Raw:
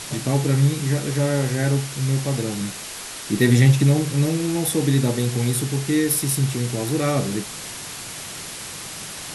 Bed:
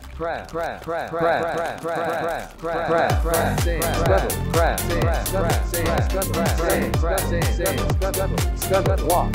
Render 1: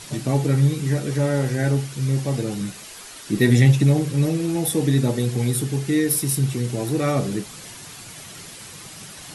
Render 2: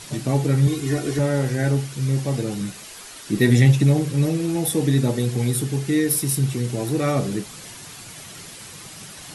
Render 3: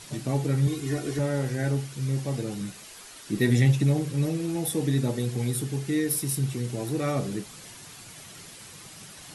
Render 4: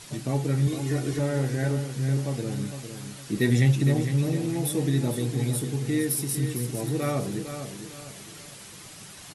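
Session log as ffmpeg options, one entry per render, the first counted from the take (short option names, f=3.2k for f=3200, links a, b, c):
-af "afftdn=nr=8:nf=-34"
-filter_complex "[0:a]asettb=1/sr,asplit=3[a][b][c];[a]atrim=end=0.674[d];[b]atrim=start=0.67:end=1.19,asetpts=PTS-STARTPTS,afade=t=in:d=0.004:c=qsin,afade=t=out:st=0.516:d=0.004:c=qsin,aecho=1:1:2.8:0.87,atrim=end_sample=22932[e];[c]atrim=start=1.186[f];[d][e]acrossfade=d=0.004:c1=hsin:c2=qsin[g];[g][f]acrossfade=d=0.004:c1=qsin:c2=hsin"
-af "volume=-6dB"
-af "aecho=1:1:456|912|1368|1824:0.355|0.131|0.0486|0.018"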